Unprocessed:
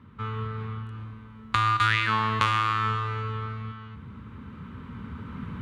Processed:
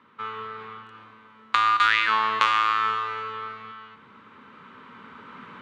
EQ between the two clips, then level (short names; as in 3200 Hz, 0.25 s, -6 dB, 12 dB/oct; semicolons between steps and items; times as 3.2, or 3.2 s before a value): BPF 500–6600 Hz; +3.5 dB